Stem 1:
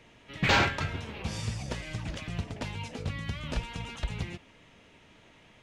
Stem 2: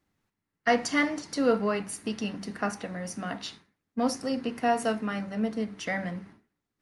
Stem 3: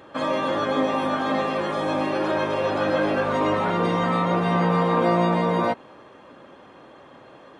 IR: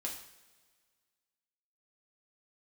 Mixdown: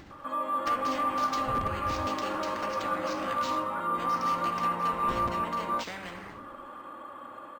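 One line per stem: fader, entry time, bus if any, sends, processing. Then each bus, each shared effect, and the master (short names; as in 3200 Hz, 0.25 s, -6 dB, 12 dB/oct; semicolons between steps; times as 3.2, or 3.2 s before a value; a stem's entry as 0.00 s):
-1.0 dB, 1.05 s, muted 2.09–4.93, no send, inverse Chebyshev low-pass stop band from 670 Hz, stop band 80 dB; comb 2.9 ms, depth 31%; wrapped overs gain 29 dB
-7.5 dB, 0.00 s, send -6 dB, treble ducked by the level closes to 1300 Hz, closed at -21 dBFS; spectral compressor 4:1
-18.0 dB, 0.10 s, no send, bell 1200 Hz +15 dB 0.52 oct; comb 3.5 ms, depth 59%; AGC gain up to 10.5 dB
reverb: on, pre-delay 3 ms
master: LPF 8400 Hz; upward compressor, threshold -37 dBFS; decimation joined by straight lines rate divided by 4×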